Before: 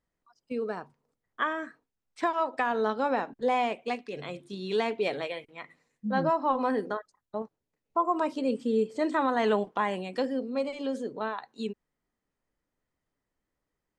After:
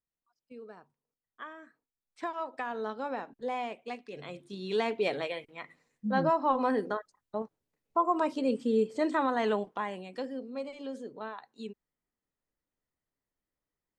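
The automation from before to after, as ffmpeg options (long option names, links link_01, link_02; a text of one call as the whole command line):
ffmpeg -i in.wav -af "volume=-0.5dB,afade=type=in:start_time=1.61:duration=0.66:silence=0.446684,afade=type=in:start_time=3.87:duration=1.19:silence=0.421697,afade=type=out:start_time=8.97:duration=0.97:silence=0.446684" out.wav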